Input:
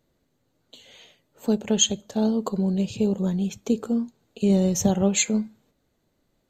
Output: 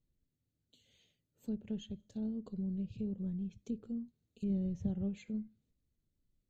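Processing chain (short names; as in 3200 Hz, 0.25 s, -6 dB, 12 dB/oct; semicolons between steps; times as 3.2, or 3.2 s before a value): passive tone stack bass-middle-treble 10-0-1; treble ducked by the level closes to 1900 Hz, closed at -38 dBFS; gain +2 dB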